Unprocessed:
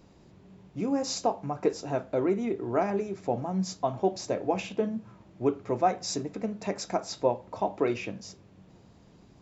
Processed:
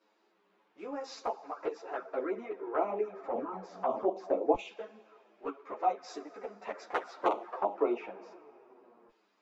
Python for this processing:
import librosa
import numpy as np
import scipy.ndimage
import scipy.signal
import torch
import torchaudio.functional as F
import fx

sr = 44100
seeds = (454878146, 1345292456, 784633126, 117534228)

y = fx.cycle_switch(x, sr, every=3, mode='inverted', at=(6.89, 7.55), fade=0.02)
y = scipy.signal.sosfilt(scipy.signal.butter(4, 310.0, 'highpass', fs=sr, output='sos'), y)
y = fx.rev_schroeder(y, sr, rt60_s=2.8, comb_ms=25, drr_db=16.5)
y = fx.transient(y, sr, attack_db=-6, sustain_db=7, at=(3.23, 4.08))
y = fx.filter_lfo_bandpass(y, sr, shape='saw_down', hz=0.22, low_hz=770.0, high_hz=3900.0, q=0.71)
y = fx.tilt_eq(y, sr, slope=-4.0)
y = fx.env_flanger(y, sr, rest_ms=9.6, full_db=-27.0)
y = fx.peak_eq(y, sr, hz=1300.0, db=6.0, octaves=1.0)
y = fx.ensemble(y, sr)
y = y * 10.0 ** (4.0 / 20.0)